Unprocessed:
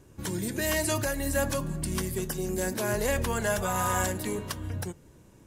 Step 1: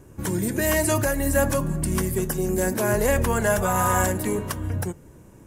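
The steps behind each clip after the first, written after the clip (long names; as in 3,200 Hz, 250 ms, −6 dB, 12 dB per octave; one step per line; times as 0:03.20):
parametric band 4,000 Hz −8.5 dB 1.3 octaves
level +7 dB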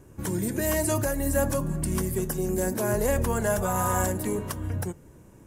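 dynamic equaliser 2,200 Hz, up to −5 dB, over −37 dBFS, Q 0.76
level −3 dB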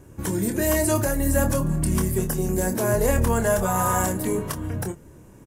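double-tracking delay 26 ms −8 dB
level +3 dB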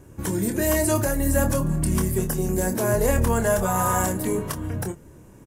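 no processing that can be heard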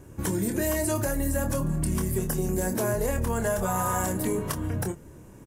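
downward compressor, threshold −23 dBFS, peak gain reduction 7.5 dB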